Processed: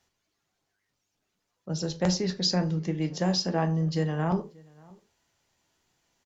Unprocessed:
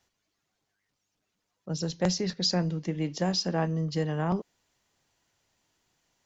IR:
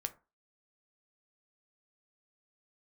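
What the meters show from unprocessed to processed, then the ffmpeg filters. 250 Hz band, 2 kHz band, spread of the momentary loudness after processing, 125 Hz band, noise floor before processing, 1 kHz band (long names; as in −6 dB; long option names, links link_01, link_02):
+2.0 dB, +0.5 dB, 7 LU, +2.0 dB, −81 dBFS, +1.5 dB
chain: -filter_complex "[0:a]asplit=2[link_01][link_02];[link_02]adelay=583.1,volume=-25dB,highshelf=frequency=4000:gain=-13.1[link_03];[link_01][link_03]amix=inputs=2:normalize=0[link_04];[1:a]atrim=start_sample=2205,atrim=end_sample=3969,asetrate=32193,aresample=44100[link_05];[link_04][link_05]afir=irnorm=-1:irlink=0"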